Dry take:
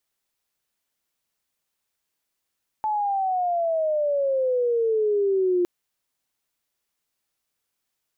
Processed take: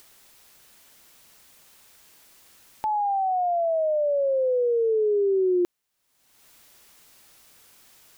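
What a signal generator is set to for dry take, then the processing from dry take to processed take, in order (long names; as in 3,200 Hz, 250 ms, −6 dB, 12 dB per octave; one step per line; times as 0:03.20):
glide logarithmic 870 Hz → 350 Hz −21.5 dBFS → −18 dBFS 2.81 s
upward compression, threshold −34 dBFS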